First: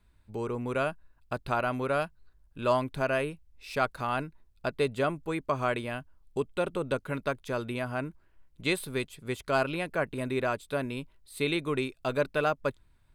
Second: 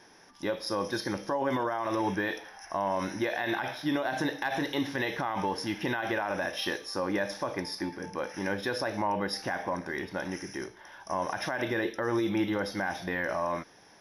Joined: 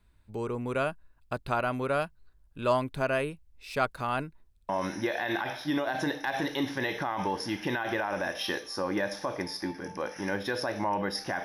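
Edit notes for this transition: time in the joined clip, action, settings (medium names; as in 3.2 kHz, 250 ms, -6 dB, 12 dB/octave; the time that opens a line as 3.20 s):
first
4.51 s: stutter in place 0.06 s, 3 plays
4.69 s: go over to second from 2.87 s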